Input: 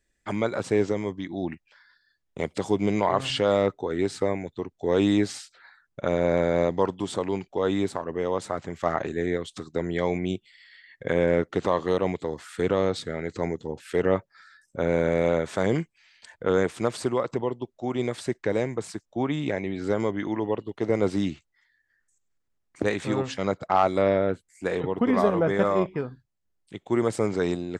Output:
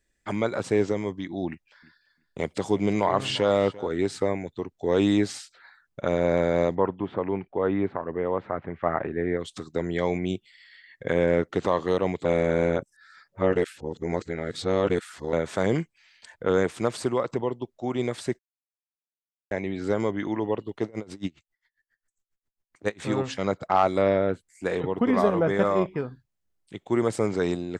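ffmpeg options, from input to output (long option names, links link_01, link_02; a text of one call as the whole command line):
ffmpeg -i in.wav -filter_complex "[0:a]asettb=1/sr,asplit=3[link_01][link_02][link_03];[link_01]atrim=end=1.484[link_04];[link_02]atrim=start=1.48:end=3.89,asetpts=PTS-STARTPTS,afade=type=in:duration=0.004:curve=qsin,afade=type=out:start_time=2.406:duration=0.004:curve=qsin,aecho=1:1:345|690:0.112|0.0168,atrim=end_sample=106281[link_05];[link_03]atrim=start=3.886[link_06];[link_04][link_05]acrossfade=duration=0.004:curve1=hsin:curve2=qsin[link_07];[link_07][link_06]acrossfade=duration=0.004:curve1=qsin:curve2=hsin,asplit=3[link_08][link_09][link_10];[link_08]afade=type=out:start_time=6.74:duration=0.02[link_11];[link_09]lowpass=frequency=2300:width=0.5412,lowpass=frequency=2300:width=1.3066,afade=type=in:start_time=6.74:duration=0.02,afade=type=out:start_time=9.39:duration=0.02[link_12];[link_10]afade=type=in:start_time=9.39:duration=0.02[link_13];[link_11][link_12][link_13]amix=inputs=3:normalize=0,asettb=1/sr,asplit=3[link_14][link_15][link_16];[link_14]atrim=end=20.854[link_17];[link_15]atrim=start=20.85:end=23.01,asetpts=PTS-STARTPTS,afade=type=in:duration=0.004:curve=qsin,afade=type=out:start_time=2.156:duration=0.004:curve=qsin,aeval=exprs='val(0)*pow(10,-30*(0.5-0.5*cos(2*PI*7.4*n/s))/20)':channel_layout=same[link_18];[link_16]atrim=start=23.006[link_19];[link_17][link_18]acrossfade=duration=0.004:curve1=hsin:curve2=qsin[link_20];[link_20][link_19]acrossfade=duration=0.004:curve1=qsin:curve2=hsin,asplit=5[link_21][link_22][link_23][link_24][link_25];[link_21]atrim=end=12.252[link_26];[link_22]atrim=start=12.248:end=15.332,asetpts=PTS-STARTPTS,areverse[link_27];[link_23]atrim=start=15.328:end=18.39,asetpts=PTS-STARTPTS,afade=type=out:start_time=3.058:duration=0.004:curve=hsin[link_28];[link_24]atrim=start=18.39:end=19.51,asetpts=PTS-STARTPTS,volume=0[link_29];[link_25]atrim=start=19.51,asetpts=PTS-STARTPTS,afade=type=in:duration=0.004:curve=hsin[link_30];[link_26][link_27]acrossfade=duration=0.004:curve1=hsin:curve2=hsin[link_31];[link_28][link_29][link_30]concat=n=3:v=0:a=1[link_32];[link_31][link_32]acrossfade=duration=0.004:curve1=hsin:curve2=hsin" out.wav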